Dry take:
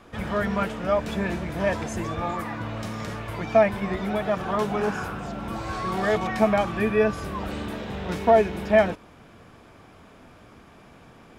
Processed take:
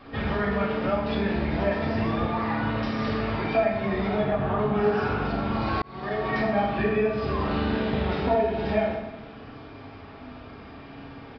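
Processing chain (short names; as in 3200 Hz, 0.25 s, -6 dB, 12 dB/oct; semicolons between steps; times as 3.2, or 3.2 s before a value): 4.2–4.74 tone controls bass +7 dB, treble -15 dB; compressor 6:1, threshold -28 dBFS, peak gain reduction 15 dB; reverb RT60 1.0 s, pre-delay 4 ms, DRR -5 dB; downsampling 11025 Hz; 5.82–6.36 fade in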